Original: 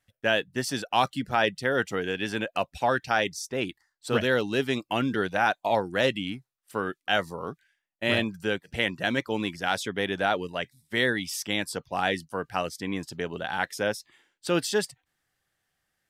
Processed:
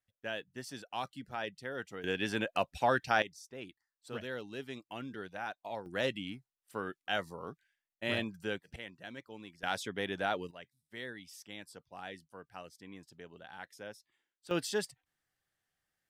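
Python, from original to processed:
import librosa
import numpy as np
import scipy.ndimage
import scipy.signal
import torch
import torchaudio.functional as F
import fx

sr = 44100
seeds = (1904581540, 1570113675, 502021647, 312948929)

y = fx.gain(x, sr, db=fx.steps((0.0, -15.0), (2.04, -4.0), (3.22, -16.5), (5.86, -9.0), (8.76, -20.0), (9.63, -8.0), (10.51, -19.0), (14.51, -8.0)))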